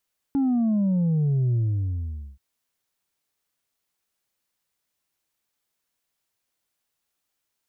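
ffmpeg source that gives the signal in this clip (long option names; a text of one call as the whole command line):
ffmpeg -f lavfi -i "aevalsrc='0.106*clip((2.03-t)/0.84,0,1)*tanh(1.33*sin(2*PI*280*2.03/log(65/280)*(exp(log(65/280)*t/2.03)-1)))/tanh(1.33)':duration=2.03:sample_rate=44100" out.wav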